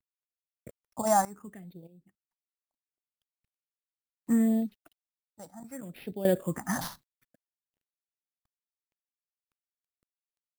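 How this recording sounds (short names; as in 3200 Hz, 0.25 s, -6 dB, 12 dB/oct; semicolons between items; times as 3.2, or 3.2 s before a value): aliases and images of a low sample rate 8000 Hz, jitter 0%; phasing stages 4, 0.69 Hz, lowest notch 400–1200 Hz; a quantiser's noise floor 12-bit, dither none; random-step tremolo 1.6 Hz, depth 95%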